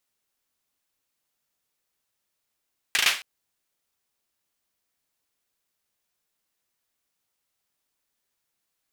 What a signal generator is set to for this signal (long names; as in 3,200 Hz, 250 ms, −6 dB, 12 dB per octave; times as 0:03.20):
synth clap length 0.27 s, bursts 4, apart 37 ms, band 2,400 Hz, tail 0.34 s